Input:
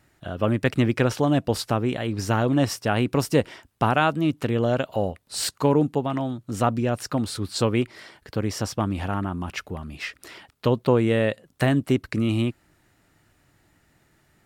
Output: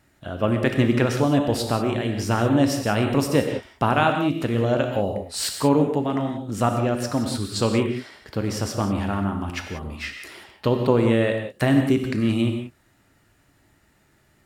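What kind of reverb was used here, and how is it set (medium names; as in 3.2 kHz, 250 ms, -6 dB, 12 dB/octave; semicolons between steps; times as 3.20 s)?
gated-style reverb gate 210 ms flat, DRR 4 dB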